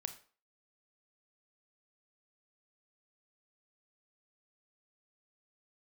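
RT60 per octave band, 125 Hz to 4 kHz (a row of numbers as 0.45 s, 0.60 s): 0.35 s, 0.40 s, 0.40 s, 0.45 s, 0.35 s, 0.35 s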